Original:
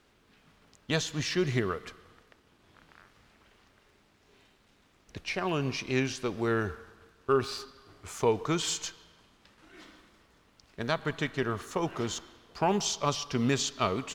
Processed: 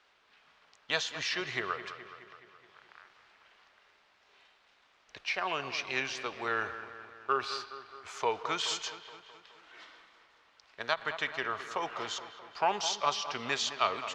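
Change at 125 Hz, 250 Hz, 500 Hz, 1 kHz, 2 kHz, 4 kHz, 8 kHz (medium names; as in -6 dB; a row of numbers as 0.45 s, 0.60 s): -18.5 dB, -14.0 dB, -6.5 dB, +1.5 dB, +2.0 dB, +1.0 dB, -5.0 dB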